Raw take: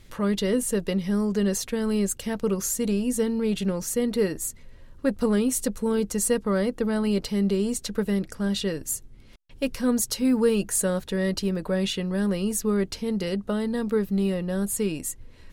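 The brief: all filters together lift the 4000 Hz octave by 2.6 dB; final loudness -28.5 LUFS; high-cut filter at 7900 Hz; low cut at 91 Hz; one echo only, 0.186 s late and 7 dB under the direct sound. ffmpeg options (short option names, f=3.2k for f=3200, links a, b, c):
-af "highpass=91,lowpass=7.9k,equalizer=f=4k:t=o:g=3.5,aecho=1:1:186:0.447,volume=-3.5dB"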